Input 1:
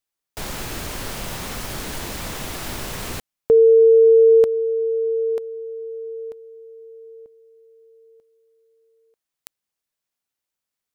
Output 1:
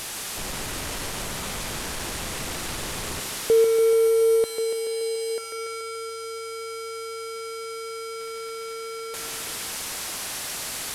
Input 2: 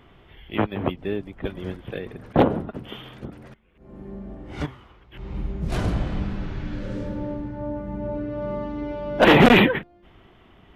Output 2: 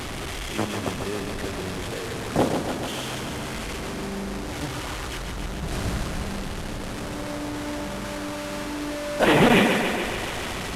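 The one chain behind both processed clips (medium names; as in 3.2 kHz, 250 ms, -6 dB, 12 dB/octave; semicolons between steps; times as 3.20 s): one-bit delta coder 64 kbps, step -22 dBFS; thinning echo 143 ms, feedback 75%, high-pass 170 Hz, level -6 dB; trim -4.5 dB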